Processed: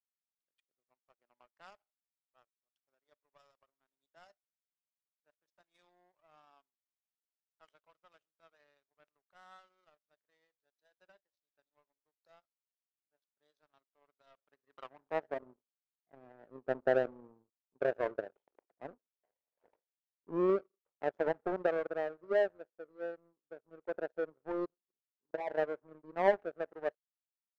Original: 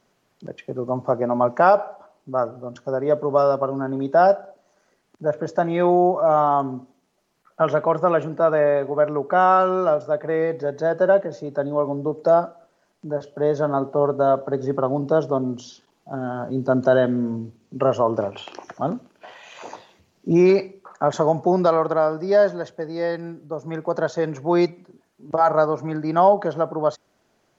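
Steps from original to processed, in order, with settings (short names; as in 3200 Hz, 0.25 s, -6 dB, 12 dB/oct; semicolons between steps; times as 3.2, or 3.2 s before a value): spectral delete 24.29–25.6, 1000–2700 Hz; band-pass sweep 3700 Hz -> 480 Hz, 14.22–15.49; power-law curve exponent 2; gain -3.5 dB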